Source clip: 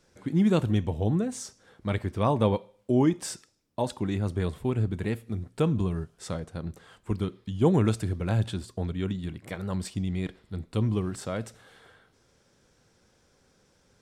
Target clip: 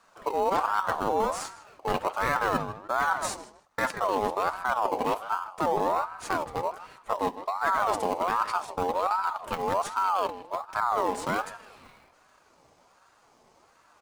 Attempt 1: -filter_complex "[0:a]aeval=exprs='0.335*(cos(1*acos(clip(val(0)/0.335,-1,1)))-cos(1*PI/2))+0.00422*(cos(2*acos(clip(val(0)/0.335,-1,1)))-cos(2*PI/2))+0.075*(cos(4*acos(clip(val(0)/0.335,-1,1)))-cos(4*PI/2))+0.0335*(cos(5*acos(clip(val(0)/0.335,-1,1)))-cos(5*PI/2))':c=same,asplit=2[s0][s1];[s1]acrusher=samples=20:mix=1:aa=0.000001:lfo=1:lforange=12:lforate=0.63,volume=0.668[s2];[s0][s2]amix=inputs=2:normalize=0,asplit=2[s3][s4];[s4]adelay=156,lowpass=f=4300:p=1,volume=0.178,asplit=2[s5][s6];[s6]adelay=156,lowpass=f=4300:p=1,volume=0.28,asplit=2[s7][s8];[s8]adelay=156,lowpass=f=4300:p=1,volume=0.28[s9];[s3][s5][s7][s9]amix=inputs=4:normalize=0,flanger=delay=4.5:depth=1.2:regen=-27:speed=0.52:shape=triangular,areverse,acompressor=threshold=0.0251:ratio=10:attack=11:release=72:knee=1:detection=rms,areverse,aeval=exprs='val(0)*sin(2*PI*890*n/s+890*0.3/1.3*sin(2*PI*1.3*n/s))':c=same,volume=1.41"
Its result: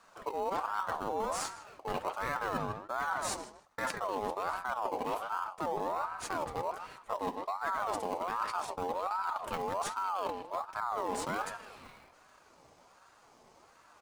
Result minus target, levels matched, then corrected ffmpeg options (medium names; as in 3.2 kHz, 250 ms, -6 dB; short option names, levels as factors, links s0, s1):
compression: peak gain reduction +8.5 dB
-filter_complex "[0:a]aeval=exprs='0.335*(cos(1*acos(clip(val(0)/0.335,-1,1)))-cos(1*PI/2))+0.00422*(cos(2*acos(clip(val(0)/0.335,-1,1)))-cos(2*PI/2))+0.075*(cos(4*acos(clip(val(0)/0.335,-1,1)))-cos(4*PI/2))+0.0335*(cos(5*acos(clip(val(0)/0.335,-1,1)))-cos(5*PI/2))':c=same,asplit=2[s0][s1];[s1]acrusher=samples=20:mix=1:aa=0.000001:lfo=1:lforange=12:lforate=0.63,volume=0.668[s2];[s0][s2]amix=inputs=2:normalize=0,asplit=2[s3][s4];[s4]adelay=156,lowpass=f=4300:p=1,volume=0.178,asplit=2[s5][s6];[s6]adelay=156,lowpass=f=4300:p=1,volume=0.28,asplit=2[s7][s8];[s8]adelay=156,lowpass=f=4300:p=1,volume=0.28[s9];[s3][s5][s7][s9]amix=inputs=4:normalize=0,flanger=delay=4.5:depth=1.2:regen=-27:speed=0.52:shape=triangular,areverse,acompressor=threshold=0.075:ratio=10:attack=11:release=72:knee=1:detection=rms,areverse,aeval=exprs='val(0)*sin(2*PI*890*n/s+890*0.3/1.3*sin(2*PI*1.3*n/s))':c=same,volume=1.41"